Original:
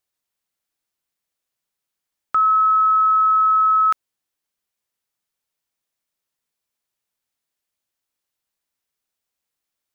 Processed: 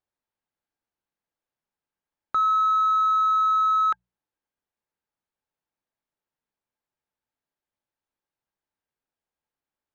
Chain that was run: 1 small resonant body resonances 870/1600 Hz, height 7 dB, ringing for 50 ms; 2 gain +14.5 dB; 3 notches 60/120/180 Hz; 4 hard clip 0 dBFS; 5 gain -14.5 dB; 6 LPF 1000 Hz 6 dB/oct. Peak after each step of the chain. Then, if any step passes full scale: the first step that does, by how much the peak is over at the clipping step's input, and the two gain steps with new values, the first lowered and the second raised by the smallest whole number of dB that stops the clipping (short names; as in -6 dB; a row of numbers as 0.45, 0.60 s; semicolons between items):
-11.0, +3.5, +3.5, 0.0, -14.5, -16.5 dBFS; step 2, 3.5 dB; step 2 +10.5 dB, step 5 -10.5 dB